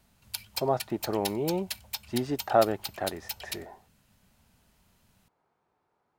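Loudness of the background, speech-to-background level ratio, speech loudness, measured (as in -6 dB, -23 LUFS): -37.5 LUFS, 7.5 dB, -30.0 LUFS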